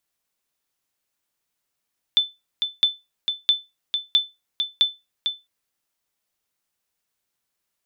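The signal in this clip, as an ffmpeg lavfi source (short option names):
-f lavfi -i "aevalsrc='0.355*(sin(2*PI*3520*mod(t,0.66))*exp(-6.91*mod(t,0.66)/0.22)+0.473*sin(2*PI*3520*max(mod(t,0.66)-0.45,0))*exp(-6.91*max(mod(t,0.66)-0.45,0)/0.22))':d=3.3:s=44100"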